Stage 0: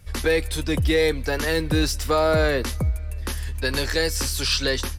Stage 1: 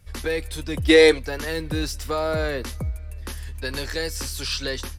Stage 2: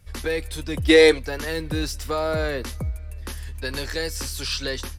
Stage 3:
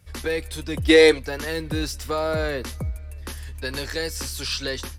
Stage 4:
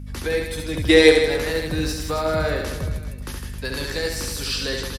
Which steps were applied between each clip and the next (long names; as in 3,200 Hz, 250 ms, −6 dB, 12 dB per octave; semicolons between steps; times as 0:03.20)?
gain on a spectral selection 0:00.89–0:01.19, 280–11,000 Hz +12 dB; level −5 dB
hard clipping −5.5 dBFS, distortion −41 dB
high-pass filter 45 Hz
reverse bouncing-ball delay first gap 70 ms, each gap 1.25×, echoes 5; mains hum 50 Hz, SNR 12 dB